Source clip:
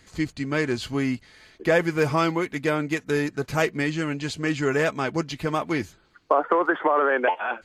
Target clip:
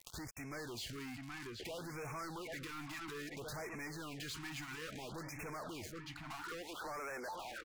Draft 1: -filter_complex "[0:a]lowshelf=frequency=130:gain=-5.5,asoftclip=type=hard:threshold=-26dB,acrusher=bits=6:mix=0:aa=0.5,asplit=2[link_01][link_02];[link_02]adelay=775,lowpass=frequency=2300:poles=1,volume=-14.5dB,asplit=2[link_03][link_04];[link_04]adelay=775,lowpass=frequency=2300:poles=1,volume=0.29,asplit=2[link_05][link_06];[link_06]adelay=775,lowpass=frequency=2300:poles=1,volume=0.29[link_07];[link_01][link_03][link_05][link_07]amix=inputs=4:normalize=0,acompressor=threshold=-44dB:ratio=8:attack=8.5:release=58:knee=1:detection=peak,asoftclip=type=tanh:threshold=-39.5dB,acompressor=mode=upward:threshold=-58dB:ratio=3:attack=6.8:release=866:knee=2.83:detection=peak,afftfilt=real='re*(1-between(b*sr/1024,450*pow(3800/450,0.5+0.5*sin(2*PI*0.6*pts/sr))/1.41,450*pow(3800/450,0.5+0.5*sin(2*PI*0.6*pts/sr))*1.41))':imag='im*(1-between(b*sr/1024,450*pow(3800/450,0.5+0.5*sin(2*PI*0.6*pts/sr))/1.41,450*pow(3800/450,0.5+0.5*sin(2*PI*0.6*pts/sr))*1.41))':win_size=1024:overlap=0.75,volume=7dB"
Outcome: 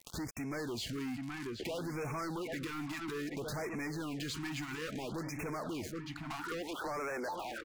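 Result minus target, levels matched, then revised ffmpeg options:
soft clipping: distortion −10 dB; 250 Hz band +3.5 dB
-filter_complex "[0:a]lowshelf=frequency=130:gain=-5.5,asoftclip=type=hard:threshold=-26dB,acrusher=bits=6:mix=0:aa=0.5,asplit=2[link_01][link_02];[link_02]adelay=775,lowpass=frequency=2300:poles=1,volume=-14.5dB,asplit=2[link_03][link_04];[link_04]adelay=775,lowpass=frequency=2300:poles=1,volume=0.29,asplit=2[link_05][link_06];[link_06]adelay=775,lowpass=frequency=2300:poles=1,volume=0.29[link_07];[link_01][link_03][link_05][link_07]amix=inputs=4:normalize=0,acompressor=threshold=-44dB:ratio=8:attack=8.5:release=58:knee=1:detection=peak,equalizer=frequency=250:width_type=o:width=1.9:gain=-9,asoftclip=type=tanh:threshold=-48dB,acompressor=mode=upward:threshold=-58dB:ratio=3:attack=6.8:release=866:knee=2.83:detection=peak,afftfilt=real='re*(1-between(b*sr/1024,450*pow(3800/450,0.5+0.5*sin(2*PI*0.6*pts/sr))/1.41,450*pow(3800/450,0.5+0.5*sin(2*PI*0.6*pts/sr))*1.41))':imag='im*(1-between(b*sr/1024,450*pow(3800/450,0.5+0.5*sin(2*PI*0.6*pts/sr))/1.41,450*pow(3800/450,0.5+0.5*sin(2*PI*0.6*pts/sr))*1.41))':win_size=1024:overlap=0.75,volume=7dB"

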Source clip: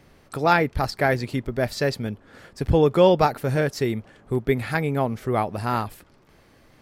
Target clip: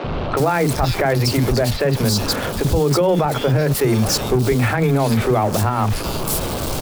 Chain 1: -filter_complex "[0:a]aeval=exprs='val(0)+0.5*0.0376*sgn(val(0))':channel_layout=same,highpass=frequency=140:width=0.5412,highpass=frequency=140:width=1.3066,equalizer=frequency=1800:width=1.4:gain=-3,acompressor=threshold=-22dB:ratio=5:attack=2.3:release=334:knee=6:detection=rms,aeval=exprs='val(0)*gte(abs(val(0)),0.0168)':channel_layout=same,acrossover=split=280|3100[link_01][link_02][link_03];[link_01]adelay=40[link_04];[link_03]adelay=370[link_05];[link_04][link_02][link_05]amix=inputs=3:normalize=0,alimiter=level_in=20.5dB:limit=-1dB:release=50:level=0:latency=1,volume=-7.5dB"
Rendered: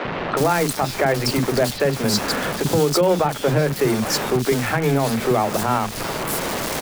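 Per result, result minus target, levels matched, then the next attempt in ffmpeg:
downward compressor: peak gain reduction +6.5 dB; 125 Hz band −4.5 dB
-filter_complex "[0:a]aeval=exprs='val(0)+0.5*0.0376*sgn(val(0))':channel_layout=same,highpass=frequency=140:width=0.5412,highpass=frequency=140:width=1.3066,equalizer=frequency=1800:width=1.4:gain=-3,acompressor=threshold=-15dB:ratio=5:attack=2.3:release=334:knee=6:detection=rms,aeval=exprs='val(0)*gte(abs(val(0)),0.0168)':channel_layout=same,acrossover=split=280|3100[link_01][link_02][link_03];[link_01]adelay=40[link_04];[link_03]adelay=370[link_05];[link_04][link_02][link_05]amix=inputs=3:normalize=0,alimiter=level_in=20.5dB:limit=-1dB:release=50:level=0:latency=1,volume=-7.5dB"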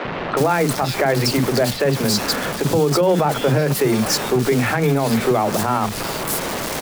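125 Hz band −3.5 dB
-filter_complex "[0:a]aeval=exprs='val(0)+0.5*0.0376*sgn(val(0))':channel_layout=same,equalizer=frequency=1800:width=1.4:gain=-3,acompressor=threshold=-15dB:ratio=5:attack=2.3:release=334:knee=6:detection=rms,aeval=exprs='val(0)*gte(abs(val(0)),0.0168)':channel_layout=same,acrossover=split=280|3100[link_01][link_02][link_03];[link_01]adelay=40[link_04];[link_03]adelay=370[link_05];[link_04][link_02][link_05]amix=inputs=3:normalize=0,alimiter=level_in=20.5dB:limit=-1dB:release=50:level=0:latency=1,volume=-7.5dB"

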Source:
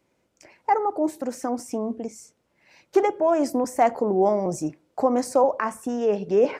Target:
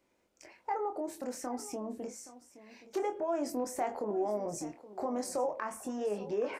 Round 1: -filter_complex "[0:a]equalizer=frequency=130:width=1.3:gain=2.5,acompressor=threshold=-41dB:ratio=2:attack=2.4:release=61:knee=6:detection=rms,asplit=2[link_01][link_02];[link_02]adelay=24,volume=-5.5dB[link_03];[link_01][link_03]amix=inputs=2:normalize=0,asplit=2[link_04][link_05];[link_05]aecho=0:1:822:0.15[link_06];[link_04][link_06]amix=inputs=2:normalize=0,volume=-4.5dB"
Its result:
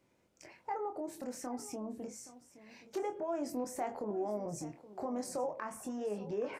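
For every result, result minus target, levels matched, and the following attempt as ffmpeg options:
125 Hz band +5.0 dB; downward compressor: peak gain reduction +4.5 dB
-filter_complex "[0:a]equalizer=frequency=130:width=1.3:gain=-9,acompressor=threshold=-41dB:ratio=2:attack=2.4:release=61:knee=6:detection=rms,asplit=2[link_01][link_02];[link_02]adelay=24,volume=-5.5dB[link_03];[link_01][link_03]amix=inputs=2:normalize=0,asplit=2[link_04][link_05];[link_05]aecho=0:1:822:0.15[link_06];[link_04][link_06]amix=inputs=2:normalize=0,volume=-4.5dB"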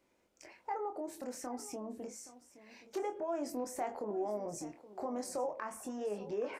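downward compressor: peak gain reduction +4 dB
-filter_complex "[0:a]equalizer=frequency=130:width=1.3:gain=-9,acompressor=threshold=-33dB:ratio=2:attack=2.4:release=61:knee=6:detection=rms,asplit=2[link_01][link_02];[link_02]adelay=24,volume=-5.5dB[link_03];[link_01][link_03]amix=inputs=2:normalize=0,asplit=2[link_04][link_05];[link_05]aecho=0:1:822:0.15[link_06];[link_04][link_06]amix=inputs=2:normalize=0,volume=-4.5dB"

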